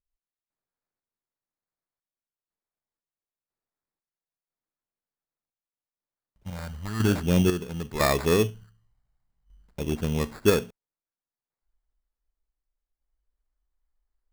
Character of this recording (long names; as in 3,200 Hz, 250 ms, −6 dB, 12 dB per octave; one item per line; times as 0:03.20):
phaser sweep stages 8, 0.41 Hz, lowest notch 360–3,400 Hz
sample-and-hold tremolo 2 Hz, depth 70%
aliases and images of a low sample rate 3,000 Hz, jitter 0%